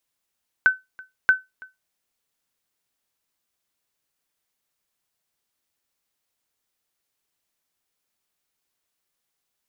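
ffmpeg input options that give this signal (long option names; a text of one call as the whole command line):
ffmpeg -f lavfi -i "aevalsrc='0.422*(sin(2*PI*1520*mod(t,0.63))*exp(-6.91*mod(t,0.63)/0.19)+0.0562*sin(2*PI*1520*max(mod(t,0.63)-0.33,0))*exp(-6.91*max(mod(t,0.63)-0.33,0)/0.19))':duration=1.26:sample_rate=44100" out.wav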